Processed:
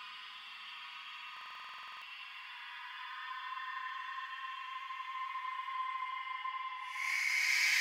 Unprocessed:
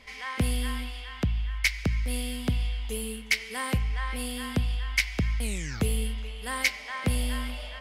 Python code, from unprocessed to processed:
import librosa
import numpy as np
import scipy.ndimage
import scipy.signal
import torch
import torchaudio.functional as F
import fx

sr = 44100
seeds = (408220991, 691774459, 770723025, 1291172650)

p1 = fx.graphic_eq_15(x, sr, hz=(630, 4000, 10000), db=(-11, -3, -6))
p2 = fx.filter_lfo_highpass(p1, sr, shape='saw_down', hz=0.98, low_hz=520.0, high_hz=1700.0, q=5.2)
p3 = fx.resonator_bank(p2, sr, root=49, chord='fifth', decay_s=0.28)
p4 = fx.paulstretch(p3, sr, seeds[0], factor=27.0, window_s=0.05, from_s=1.37)
p5 = scipy.signal.sosfilt(scipy.signal.butter(2, 58.0, 'highpass', fs=sr, output='sos'), p4)
p6 = fx.over_compress(p5, sr, threshold_db=-47.0, ratio=-0.5)
p7 = p5 + (p6 * 10.0 ** (-1.0 / 20.0))
p8 = fx.dynamic_eq(p7, sr, hz=530.0, q=0.99, threshold_db=-59.0, ratio=4.0, max_db=-5)
p9 = fx.buffer_glitch(p8, sr, at_s=(1.32,), block=2048, repeats=14)
y = p9 * 10.0 ** (6.0 / 20.0)